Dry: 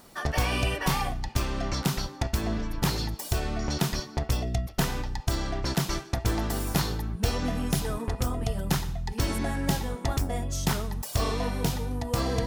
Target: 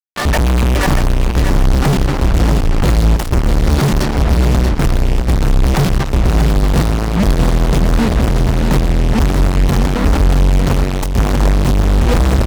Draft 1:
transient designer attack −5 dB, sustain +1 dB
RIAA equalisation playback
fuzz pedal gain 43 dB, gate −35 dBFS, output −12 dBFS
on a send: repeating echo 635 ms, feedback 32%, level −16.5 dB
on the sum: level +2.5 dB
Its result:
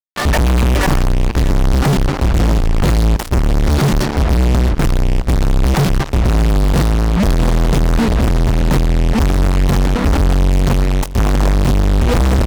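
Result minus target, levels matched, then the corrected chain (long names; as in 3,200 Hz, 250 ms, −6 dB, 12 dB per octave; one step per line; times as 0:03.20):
echo-to-direct −9.5 dB
transient designer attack −5 dB, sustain +1 dB
RIAA equalisation playback
fuzz pedal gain 43 dB, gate −35 dBFS, output −12 dBFS
on a send: repeating echo 635 ms, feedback 32%, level −7 dB
on the sum: level +2.5 dB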